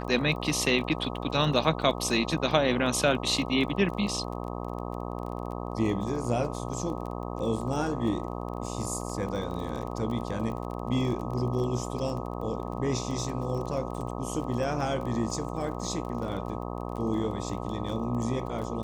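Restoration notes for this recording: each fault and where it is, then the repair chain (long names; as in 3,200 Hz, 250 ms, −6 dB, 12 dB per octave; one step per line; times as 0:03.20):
mains buzz 60 Hz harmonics 21 −35 dBFS
surface crackle 24 per second −35 dBFS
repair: click removal
hum removal 60 Hz, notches 21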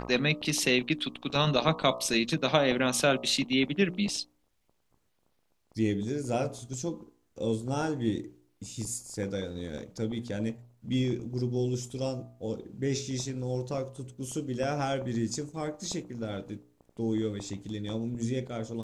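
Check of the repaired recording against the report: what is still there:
none of them is left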